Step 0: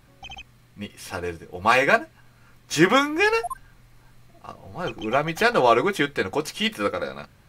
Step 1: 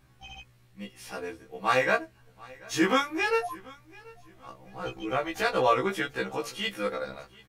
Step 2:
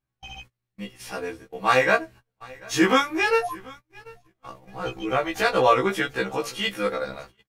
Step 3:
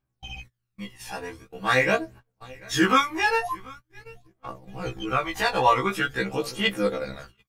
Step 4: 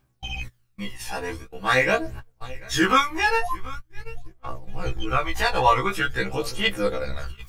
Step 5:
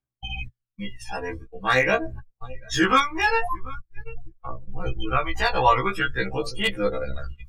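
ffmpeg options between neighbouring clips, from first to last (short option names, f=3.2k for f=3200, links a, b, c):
-af "aecho=1:1:736|1472:0.0708|0.0219,afftfilt=real='re*1.73*eq(mod(b,3),0)':imag='im*1.73*eq(mod(b,3),0)':win_size=2048:overlap=0.75,volume=-4dB"
-af "agate=range=-29dB:threshold=-49dB:ratio=16:detection=peak,volume=5dB"
-af "aphaser=in_gain=1:out_gain=1:delay=1.2:decay=0.57:speed=0.45:type=triangular,volume=-2dB"
-af "asubboost=boost=8:cutoff=68,areverse,acompressor=mode=upward:threshold=-25dB:ratio=2.5,areverse,volume=1.5dB"
-filter_complex "[0:a]afftdn=nr=23:nf=-35,acrossover=split=250|1800[a][b][c];[c]asoftclip=type=hard:threshold=-20.5dB[d];[a][b][d]amix=inputs=3:normalize=0"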